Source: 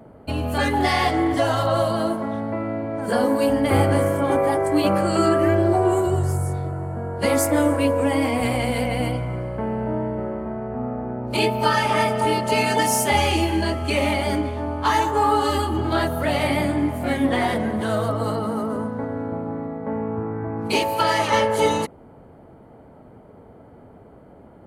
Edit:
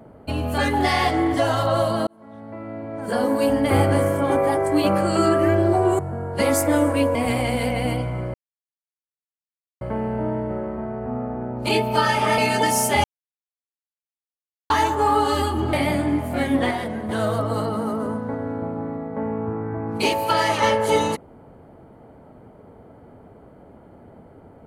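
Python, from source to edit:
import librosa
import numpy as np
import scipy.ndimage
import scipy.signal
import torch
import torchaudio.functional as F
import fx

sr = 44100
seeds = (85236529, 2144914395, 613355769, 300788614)

y = fx.edit(x, sr, fx.fade_in_span(start_s=2.07, length_s=1.39),
    fx.cut(start_s=5.99, length_s=0.84),
    fx.cut(start_s=7.99, length_s=0.31),
    fx.insert_silence(at_s=9.49, length_s=1.47),
    fx.cut(start_s=12.06, length_s=0.48),
    fx.silence(start_s=13.2, length_s=1.66),
    fx.cut(start_s=15.89, length_s=0.54),
    fx.clip_gain(start_s=17.41, length_s=0.38, db=-5.0), tone=tone)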